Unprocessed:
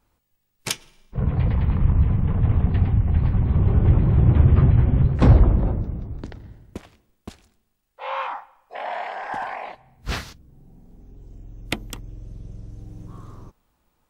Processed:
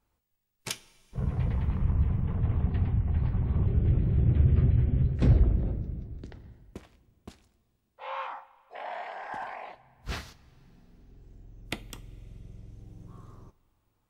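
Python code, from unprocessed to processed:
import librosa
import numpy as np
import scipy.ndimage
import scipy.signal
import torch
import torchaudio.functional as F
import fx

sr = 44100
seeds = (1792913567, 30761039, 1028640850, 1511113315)

y = fx.peak_eq(x, sr, hz=980.0, db=-12.0, octaves=0.99, at=(3.66, 6.29))
y = fx.rev_double_slope(y, sr, seeds[0], early_s=0.27, late_s=3.9, knee_db=-21, drr_db=12.0)
y = F.gain(torch.from_numpy(y), -8.5).numpy()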